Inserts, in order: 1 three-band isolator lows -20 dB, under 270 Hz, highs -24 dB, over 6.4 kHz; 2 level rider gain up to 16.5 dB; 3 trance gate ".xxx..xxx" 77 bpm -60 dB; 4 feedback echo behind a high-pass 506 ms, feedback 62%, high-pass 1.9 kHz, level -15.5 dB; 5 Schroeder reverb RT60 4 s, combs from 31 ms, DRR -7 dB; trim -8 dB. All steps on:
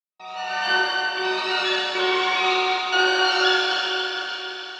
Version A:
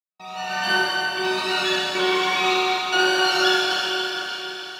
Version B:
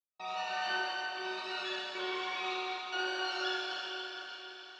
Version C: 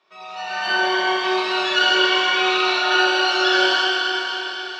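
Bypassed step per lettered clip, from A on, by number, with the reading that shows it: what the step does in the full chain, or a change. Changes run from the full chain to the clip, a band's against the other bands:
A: 1, 8 kHz band +4.5 dB; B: 2, loudness change -15.0 LU; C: 3, loudness change +3.0 LU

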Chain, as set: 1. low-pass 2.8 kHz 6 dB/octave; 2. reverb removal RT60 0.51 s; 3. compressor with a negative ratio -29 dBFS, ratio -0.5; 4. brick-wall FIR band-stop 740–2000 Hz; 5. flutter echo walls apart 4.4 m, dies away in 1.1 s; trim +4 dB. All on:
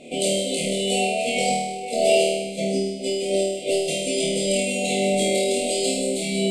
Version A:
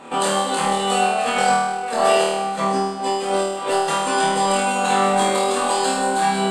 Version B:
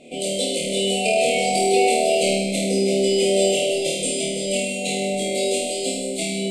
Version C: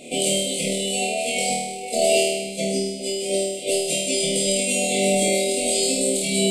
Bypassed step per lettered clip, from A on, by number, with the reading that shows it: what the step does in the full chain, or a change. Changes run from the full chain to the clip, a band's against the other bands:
4, 1 kHz band +12.0 dB; 3, loudness change +2.0 LU; 1, loudness change +1.0 LU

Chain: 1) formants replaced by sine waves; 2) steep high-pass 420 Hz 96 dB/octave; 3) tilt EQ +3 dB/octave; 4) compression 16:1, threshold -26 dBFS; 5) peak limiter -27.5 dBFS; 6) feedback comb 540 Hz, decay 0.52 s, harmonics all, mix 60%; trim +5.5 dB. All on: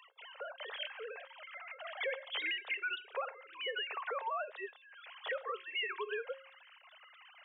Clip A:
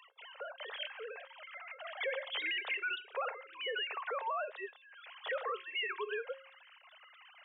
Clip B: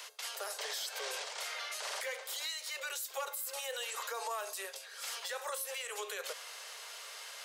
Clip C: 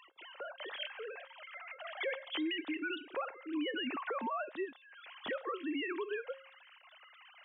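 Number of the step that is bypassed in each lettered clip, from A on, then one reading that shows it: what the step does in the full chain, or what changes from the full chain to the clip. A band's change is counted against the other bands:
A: 4, mean gain reduction 3.5 dB; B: 1, momentary loudness spread change -11 LU; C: 2, 250 Hz band +23.0 dB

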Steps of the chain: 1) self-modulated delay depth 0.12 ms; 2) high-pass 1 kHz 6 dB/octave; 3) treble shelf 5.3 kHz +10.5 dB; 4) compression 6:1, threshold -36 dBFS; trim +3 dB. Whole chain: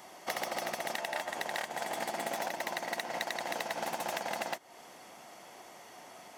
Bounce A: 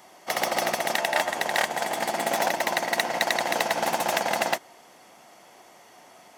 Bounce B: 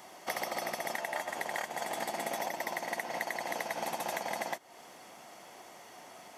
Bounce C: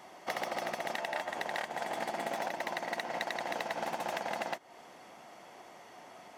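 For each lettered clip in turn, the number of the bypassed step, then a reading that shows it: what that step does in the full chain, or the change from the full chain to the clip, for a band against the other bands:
4, mean gain reduction 7.0 dB; 1, crest factor change -3.0 dB; 3, 8 kHz band -6.5 dB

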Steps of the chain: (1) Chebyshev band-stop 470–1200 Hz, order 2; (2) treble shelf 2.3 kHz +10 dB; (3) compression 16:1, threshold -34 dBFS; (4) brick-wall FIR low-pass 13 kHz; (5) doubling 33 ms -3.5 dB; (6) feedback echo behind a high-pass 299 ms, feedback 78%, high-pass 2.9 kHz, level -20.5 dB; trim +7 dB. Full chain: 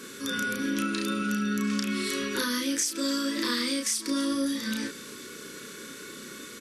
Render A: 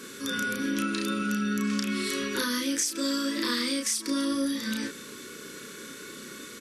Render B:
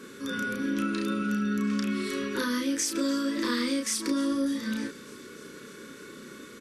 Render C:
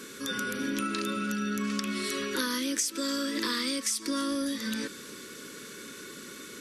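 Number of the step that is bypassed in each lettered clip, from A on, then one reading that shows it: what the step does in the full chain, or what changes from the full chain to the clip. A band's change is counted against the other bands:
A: 6, echo-to-direct -25.0 dB to none; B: 2, 4 kHz band -4.0 dB; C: 5, crest factor change +1.5 dB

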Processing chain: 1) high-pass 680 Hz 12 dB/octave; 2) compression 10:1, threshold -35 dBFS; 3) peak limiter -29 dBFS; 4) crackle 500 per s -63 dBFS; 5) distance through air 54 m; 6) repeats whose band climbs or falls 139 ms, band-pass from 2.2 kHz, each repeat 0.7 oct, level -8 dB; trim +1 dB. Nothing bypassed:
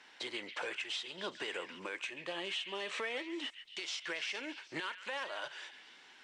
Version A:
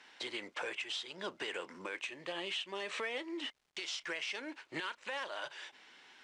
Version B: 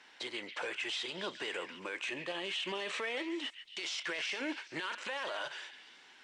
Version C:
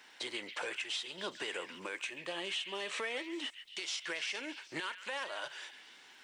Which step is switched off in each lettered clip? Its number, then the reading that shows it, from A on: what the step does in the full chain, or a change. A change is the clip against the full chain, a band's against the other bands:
6, echo-to-direct -10.5 dB to none; 2, 250 Hz band +2.0 dB; 5, 8 kHz band +4.0 dB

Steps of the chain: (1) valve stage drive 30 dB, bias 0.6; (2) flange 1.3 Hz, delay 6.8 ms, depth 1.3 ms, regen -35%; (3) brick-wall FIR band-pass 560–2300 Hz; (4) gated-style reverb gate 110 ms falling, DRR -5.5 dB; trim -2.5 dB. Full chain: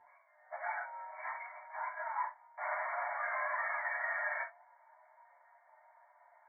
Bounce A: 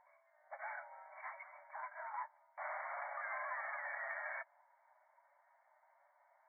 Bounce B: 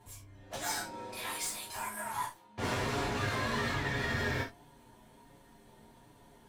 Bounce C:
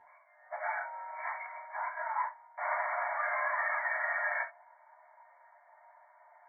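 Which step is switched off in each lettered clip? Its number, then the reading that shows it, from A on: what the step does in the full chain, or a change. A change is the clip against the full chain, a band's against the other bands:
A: 4, loudness change -7.0 LU; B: 3, loudness change +3.0 LU; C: 2, loudness change +4.0 LU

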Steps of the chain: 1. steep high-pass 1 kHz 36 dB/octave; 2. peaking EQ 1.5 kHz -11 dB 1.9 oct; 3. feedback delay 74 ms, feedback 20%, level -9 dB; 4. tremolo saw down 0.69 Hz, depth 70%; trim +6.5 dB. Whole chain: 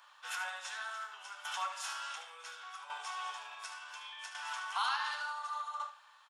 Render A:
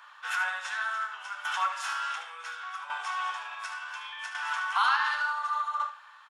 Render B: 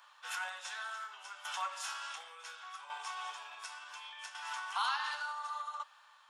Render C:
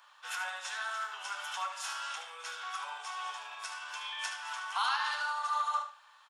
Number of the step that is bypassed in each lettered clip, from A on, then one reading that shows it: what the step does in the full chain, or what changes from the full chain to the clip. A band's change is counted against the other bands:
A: 2, 2 kHz band +6.5 dB; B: 3, momentary loudness spread change +1 LU; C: 4, loudness change +4.0 LU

